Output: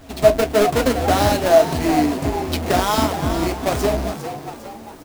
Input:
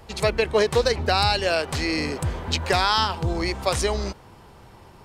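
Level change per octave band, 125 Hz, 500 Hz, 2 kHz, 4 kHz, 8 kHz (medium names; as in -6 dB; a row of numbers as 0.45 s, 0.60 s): +3.0 dB, +6.5 dB, 0.0 dB, -2.5 dB, +4.5 dB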